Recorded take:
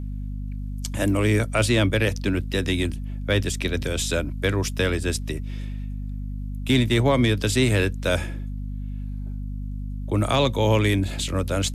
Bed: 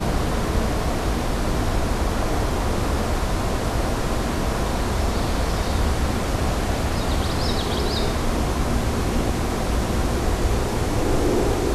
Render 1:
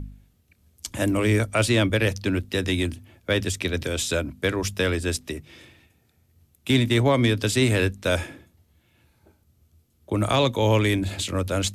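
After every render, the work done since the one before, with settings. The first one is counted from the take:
hum removal 50 Hz, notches 5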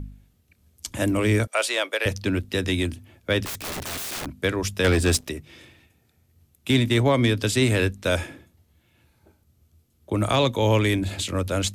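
0:01.47–0:02.06: high-pass filter 500 Hz 24 dB per octave
0:03.45–0:04.26: wrap-around overflow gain 27 dB
0:04.84–0:05.29: leveller curve on the samples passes 2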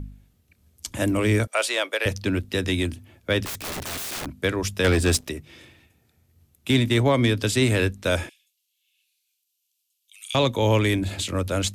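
0:08.29–0:10.35: elliptic high-pass filter 2,700 Hz, stop band 80 dB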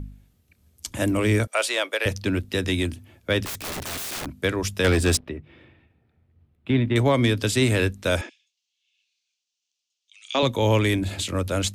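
0:05.17–0:06.96: high-frequency loss of the air 460 metres
0:08.21–0:10.43: elliptic band-pass filter 240–6,300 Hz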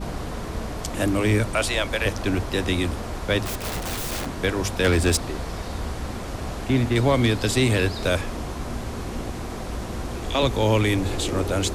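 mix in bed −8.5 dB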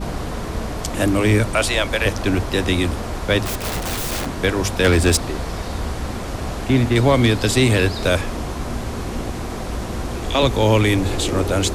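level +4.5 dB

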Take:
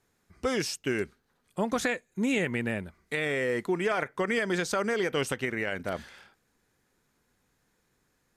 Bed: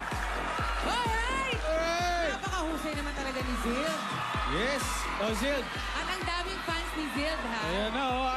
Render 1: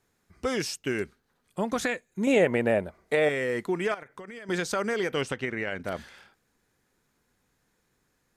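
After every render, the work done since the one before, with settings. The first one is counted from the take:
0:02.27–0:03.29: parametric band 610 Hz +14.5 dB 1.3 octaves
0:03.94–0:04.49: downward compressor 8 to 1, threshold −39 dBFS
0:05.22–0:05.84: high-frequency loss of the air 57 metres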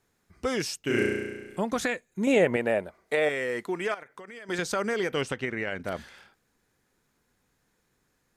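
0:00.84–0:01.60: flutter between parallel walls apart 5.8 metres, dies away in 1.3 s
0:02.56–0:04.59: low-shelf EQ 230 Hz −9.5 dB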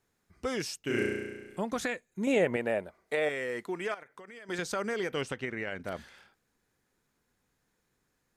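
level −4.5 dB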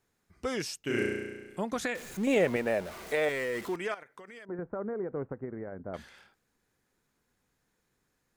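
0:01.95–0:03.76: converter with a step at zero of −39 dBFS
0:04.45–0:05.94: Gaussian smoothing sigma 7.9 samples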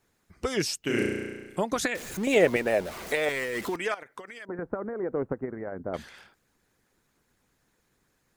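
harmonic and percussive parts rebalanced percussive +9 dB
dynamic equaliser 1,200 Hz, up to −3 dB, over −34 dBFS, Q 0.74

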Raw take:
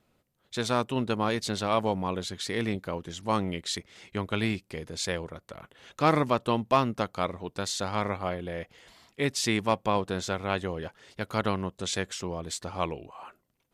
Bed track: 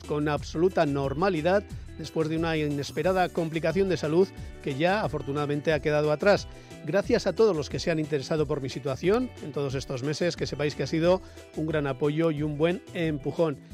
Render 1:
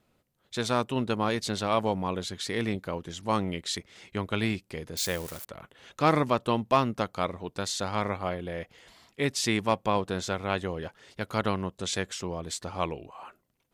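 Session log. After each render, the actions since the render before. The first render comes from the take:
0:04.97–0:05.45: spike at every zero crossing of −29 dBFS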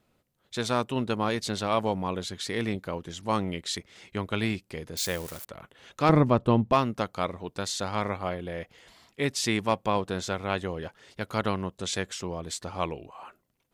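0:06.09–0:06.73: spectral tilt −3 dB per octave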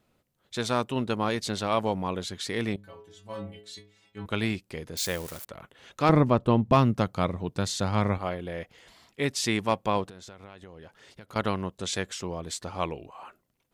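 0:02.76–0:04.26: stiff-string resonator 99 Hz, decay 0.55 s, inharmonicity 0.008
0:06.68–0:08.18: parametric band 120 Hz +10 dB 2.3 octaves
0:10.04–0:11.36: downward compressor 10 to 1, threshold −42 dBFS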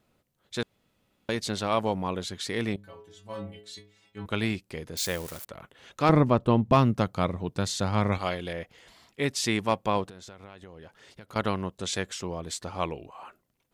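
0:00.63–0:01.29: fill with room tone
0:08.12–0:08.53: parametric band 5,300 Hz +12.5 dB 2.4 octaves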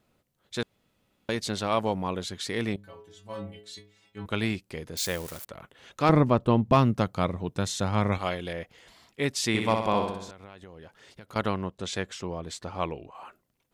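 0:07.51–0:08.44: notch filter 4,600 Hz, Q 8.7
0:09.48–0:10.31: flutter between parallel walls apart 10.8 metres, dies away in 0.74 s
0:11.47–0:13.15: high-shelf EQ 5,800 Hz −9 dB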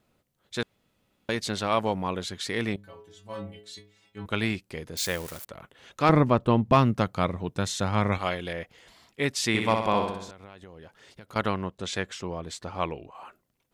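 dynamic equaliser 1,800 Hz, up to +3 dB, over −42 dBFS, Q 0.78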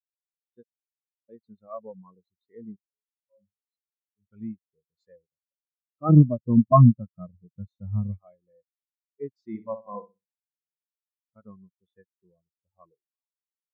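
in parallel at −1 dB: brickwall limiter −16 dBFS, peak gain reduction 9.5 dB
on the sum: every bin expanded away from the loudest bin 4 to 1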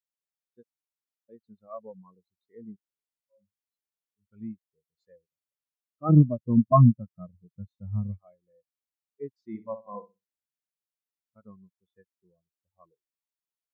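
level −2.5 dB

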